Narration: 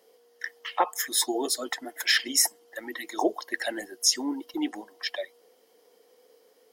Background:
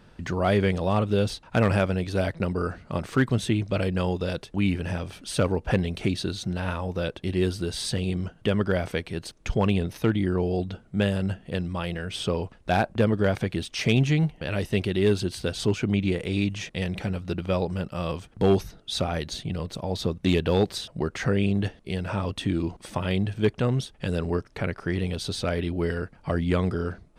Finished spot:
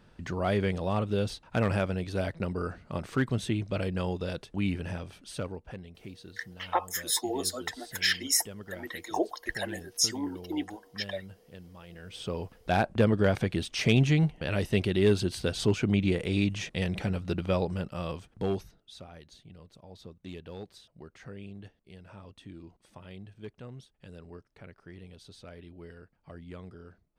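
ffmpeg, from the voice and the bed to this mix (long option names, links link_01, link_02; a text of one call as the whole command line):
ffmpeg -i stem1.wav -i stem2.wav -filter_complex "[0:a]adelay=5950,volume=-3.5dB[link_01];[1:a]volume=12.5dB,afade=type=out:start_time=4.81:duration=0.93:silence=0.199526,afade=type=in:start_time=11.87:duration=1.09:silence=0.125893,afade=type=out:start_time=17.41:duration=1.56:silence=0.112202[link_02];[link_01][link_02]amix=inputs=2:normalize=0" out.wav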